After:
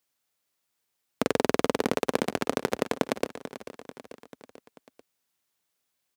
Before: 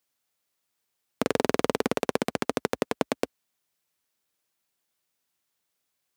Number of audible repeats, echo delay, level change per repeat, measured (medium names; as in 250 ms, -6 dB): 4, 440 ms, -4.5 dB